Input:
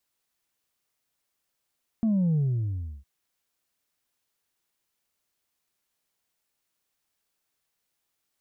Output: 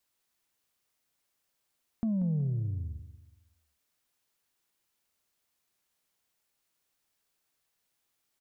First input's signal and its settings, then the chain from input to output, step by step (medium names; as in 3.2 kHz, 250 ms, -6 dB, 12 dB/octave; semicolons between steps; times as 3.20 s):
sub drop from 230 Hz, over 1.01 s, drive 1.5 dB, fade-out 0.69 s, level -21 dB
compression 1.5:1, threshold -38 dBFS; on a send: feedback delay 186 ms, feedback 36%, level -12 dB